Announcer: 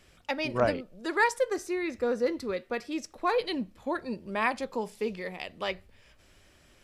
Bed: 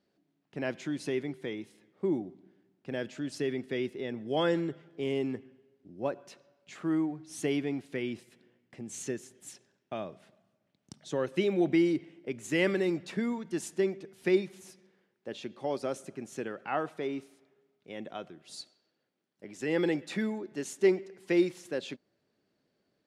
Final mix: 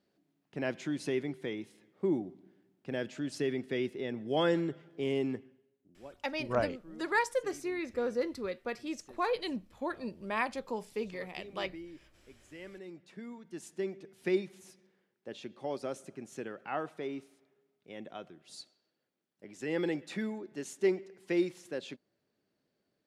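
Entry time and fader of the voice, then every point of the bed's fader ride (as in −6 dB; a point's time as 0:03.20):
5.95 s, −4.5 dB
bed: 0:05.33 −0.5 dB
0:06.24 −21 dB
0:12.60 −21 dB
0:14.10 −4 dB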